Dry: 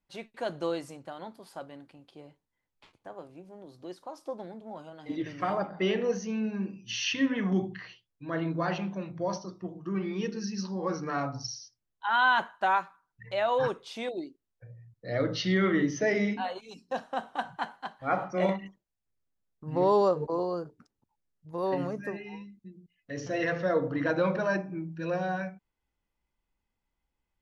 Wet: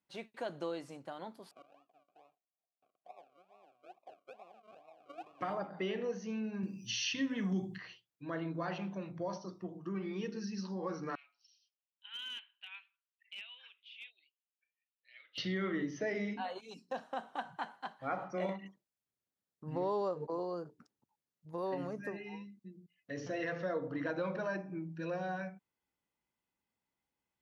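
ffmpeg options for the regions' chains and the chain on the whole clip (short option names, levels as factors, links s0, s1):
-filter_complex "[0:a]asettb=1/sr,asplit=3[s0][s1][s2];[s0]atrim=end=1.514[s3];[s1]atrim=start=1.51:end=5.41,asetpts=PTS-STARTPTS,afade=t=in:d=0.004:c=qsin,afade=t=out:st=3.896:d=0.004:c=qsin,acrusher=samples=40:mix=1:aa=0.000001:lfo=1:lforange=24:lforate=2.3,asplit=3[s4][s5][s6];[s4]bandpass=f=730:t=q:w=8,volume=1[s7];[s5]bandpass=f=1090:t=q:w=8,volume=0.501[s8];[s6]bandpass=f=2440:t=q:w=8,volume=0.355[s9];[s7][s8][s9]amix=inputs=3:normalize=0[s10];[s2]atrim=start=5.406[s11];[s3][s10]acrossfade=d=0.004:c1=hsin:c2=qsin[s12];[s12][s11]acrossfade=d=0.004:c1=qsin:c2=hsin,asettb=1/sr,asplit=3[s13][s14][s15];[s13]atrim=end=6.634[s16];[s14]atrim=start=6.63:end=7.78,asetpts=PTS-STARTPTS,afade=t=in:d=0.004:c=qsin,afade=t=out:st=1.146:d=0.004:c=qsin,bass=f=250:g=8,treble=f=4000:g=15,acompressor=mode=upward:threshold=0.00891:ratio=2.5:attack=3.2:release=140:knee=2.83:detection=peak[s17];[s15]atrim=start=7.776[s18];[s16][s17]acrossfade=d=0.004:c1=hsin:c2=qsin[s19];[s19][s18]acrossfade=d=0.004:c1=qsin:c2=hsin,asettb=1/sr,asplit=3[s20][s21][s22];[s20]atrim=end=11.154[s23];[s21]atrim=start=11.15:end=15.38,asetpts=PTS-STARTPTS,afade=t=in:d=0.004:c=qsin,afade=t=out:st=4.226:d=0.004:c=qsin,asuperpass=centerf=2800:order=4:qfactor=3.3,aeval=exprs='clip(val(0),-1,0.0141)':c=same[s24];[s22]atrim=start=15.376[s25];[s23][s24]acrossfade=d=0.004:c1=hsin:c2=qsin[s26];[s26][s25]acrossfade=d=0.004:c1=qsin:c2=hsin,acrossover=split=5400[s27][s28];[s28]acompressor=threshold=0.00112:ratio=4:attack=1:release=60[s29];[s27][s29]amix=inputs=2:normalize=0,highpass=130,acompressor=threshold=0.0178:ratio=2,volume=0.708"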